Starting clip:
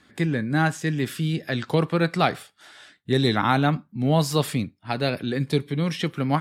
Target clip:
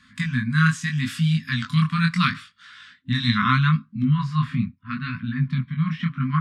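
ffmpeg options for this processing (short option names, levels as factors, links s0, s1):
-af "asetnsamples=n=441:p=0,asendcmd='2.32 lowpass f 4500;4.03 lowpass f 1700',lowpass=8500,afftfilt=real='re*(1-between(b*sr/4096,260,1000))':imag='im*(1-between(b*sr/4096,260,1000))':win_size=4096:overlap=0.75,flanger=delay=18:depth=7.8:speed=0.76,volume=2.11"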